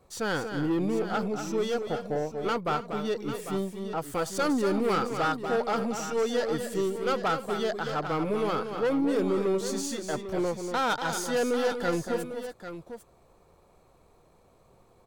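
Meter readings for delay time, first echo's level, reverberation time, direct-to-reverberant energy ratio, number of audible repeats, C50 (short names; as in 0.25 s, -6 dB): 0.238 s, -8.0 dB, none, none, 3, none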